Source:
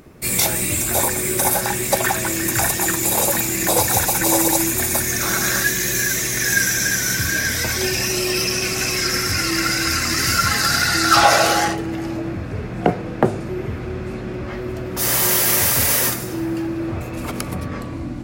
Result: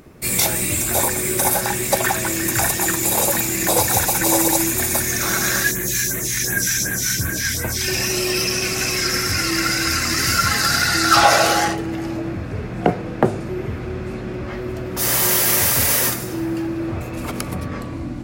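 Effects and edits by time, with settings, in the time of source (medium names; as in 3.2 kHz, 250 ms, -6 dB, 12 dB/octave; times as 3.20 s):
5.71–7.88 s: phase shifter stages 2, 2.7 Hz, lowest notch 480–4700 Hz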